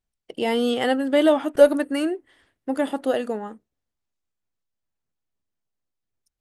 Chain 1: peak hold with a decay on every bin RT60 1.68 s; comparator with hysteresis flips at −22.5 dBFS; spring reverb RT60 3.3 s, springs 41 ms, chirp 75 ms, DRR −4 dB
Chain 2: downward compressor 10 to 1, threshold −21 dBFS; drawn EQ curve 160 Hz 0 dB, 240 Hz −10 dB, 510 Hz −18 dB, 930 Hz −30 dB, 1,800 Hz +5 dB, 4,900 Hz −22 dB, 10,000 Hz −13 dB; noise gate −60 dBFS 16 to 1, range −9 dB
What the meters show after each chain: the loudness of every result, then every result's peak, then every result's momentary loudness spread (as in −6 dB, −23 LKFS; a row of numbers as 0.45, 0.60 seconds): −17.0, −37.0 LKFS; −4.0, −18.5 dBFS; 15, 15 LU